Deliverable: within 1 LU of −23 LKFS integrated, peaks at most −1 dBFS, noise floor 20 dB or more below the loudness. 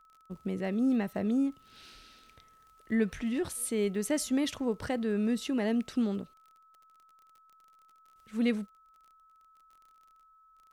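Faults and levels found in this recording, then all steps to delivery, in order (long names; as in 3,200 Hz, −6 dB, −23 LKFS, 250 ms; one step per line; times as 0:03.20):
crackle rate 37 per second; interfering tone 1,300 Hz; level of the tone −59 dBFS; integrated loudness −31.5 LKFS; sample peak −16.0 dBFS; target loudness −23.0 LKFS
→ click removal
notch filter 1,300 Hz, Q 30
level +8.5 dB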